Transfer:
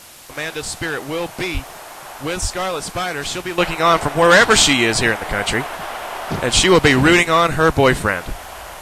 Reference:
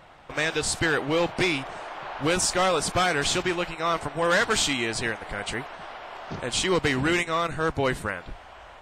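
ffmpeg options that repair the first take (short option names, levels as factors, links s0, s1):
-filter_complex "[0:a]adeclick=t=4,asplit=3[s0][s1][s2];[s0]afade=t=out:st=1.53:d=0.02[s3];[s1]highpass=f=140:w=0.5412,highpass=f=140:w=1.3066,afade=t=in:st=1.53:d=0.02,afade=t=out:st=1.65:d=0.02[s4];[s2]afade=t=in:st=1.65:d=0.02[s5];[s3][s4][s5]amix=inputs=3:normalize=0,asplit=3[s6][s7][s8];[s6]afade=t=out:st=2.41:d=0.02[s9];[s7]highpass=f=140:w=0.5412,highpass=f=140:w=1.3066,afade=t=in:st=2.41:d=0.02,afade=t=out:st=2.53:d=0.02[s10];[s8]afade=t=in:st=2.53:d=0.02[s11];[s9][s10][s11]amix=inputs=3:normalize=0,asplit=3[s12][s13][s14];[s12]afade=t=out:st=6.55:d=0.02[s15];[s13]highpass=f=140:w=0.5412,highpass=f=140:w=1.3066,afade=t=in:st=6.55:d=0.02,afade=t=out:st=6.67:d=0.02[s16];[s14]afade=t=in:st=6.67:d=0.02[s17];[s15][s16][s17]amix=inputs=3:normalize=0,afwtdn=0.01,asetnsamples=n=441:p=0,asendcmd='3.58 volume volume -11.5dB',volume=1"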